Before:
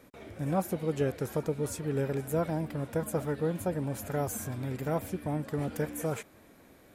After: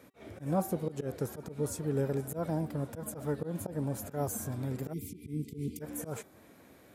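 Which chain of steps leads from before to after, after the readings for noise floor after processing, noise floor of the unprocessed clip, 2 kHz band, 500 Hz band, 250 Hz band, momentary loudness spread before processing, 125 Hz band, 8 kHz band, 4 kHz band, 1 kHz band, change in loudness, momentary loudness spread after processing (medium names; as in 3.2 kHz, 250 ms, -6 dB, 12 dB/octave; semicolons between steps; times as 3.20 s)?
-58 dBFS, -58 dBFS, -7.5 dB, -4.5 dB, -2.5 dB, 4 LU, -2.5 dB, -1.0 dB, -5.0 dB, -4.0 dB, -3.0 dB, 8 LU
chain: slow attack 123 ms; high-pass 65 Hz; de-hum 383.1 Hz, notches 10; dynamic bell 2.4 kHz, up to -8 dB, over -57 dBFS, Q 0.98; spectral selection erased 4.93–5.81 s, 470–2000 Hz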